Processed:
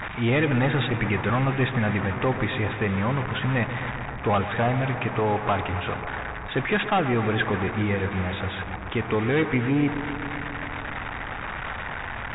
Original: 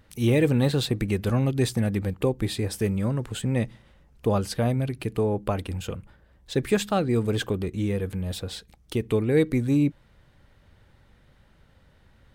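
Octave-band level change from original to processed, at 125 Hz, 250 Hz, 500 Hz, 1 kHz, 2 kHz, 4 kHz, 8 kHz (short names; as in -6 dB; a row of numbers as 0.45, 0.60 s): 0.0 dB, -0.5 dB, -0.5 dB, +9.5 dB, +11.0 dB, +1.0 dB, under -40 dB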